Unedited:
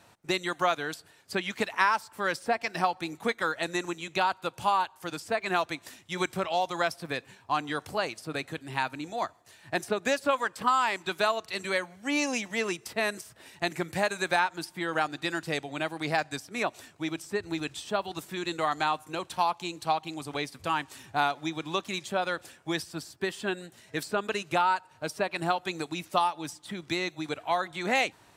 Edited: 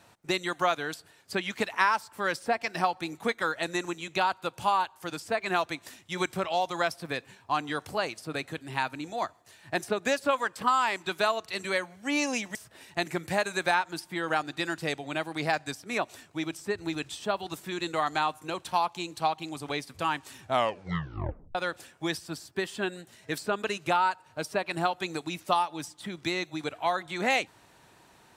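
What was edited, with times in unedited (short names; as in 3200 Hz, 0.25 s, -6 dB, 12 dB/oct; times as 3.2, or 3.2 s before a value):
12.55–13.2 cut
21.07 tape stop 1.13 s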